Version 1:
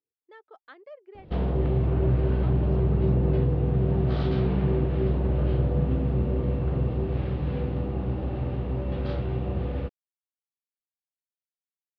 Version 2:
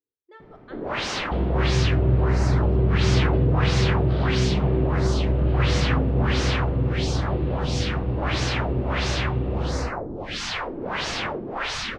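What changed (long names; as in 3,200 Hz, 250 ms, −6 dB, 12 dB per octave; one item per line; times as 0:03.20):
first sound: unmuted
reverb: on, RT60 0.75 s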